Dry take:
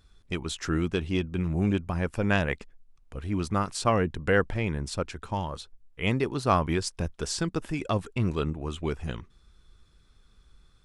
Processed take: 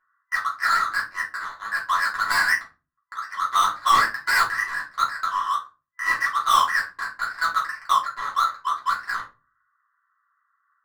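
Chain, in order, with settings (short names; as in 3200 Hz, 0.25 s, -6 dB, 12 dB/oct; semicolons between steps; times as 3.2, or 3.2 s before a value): FFT band-pass 1000–2000 Hz; sample leveller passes 3; overloaded stage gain 27 dB; shoebox room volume 130 m³, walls furnished, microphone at 3.1 m; gain +4 dB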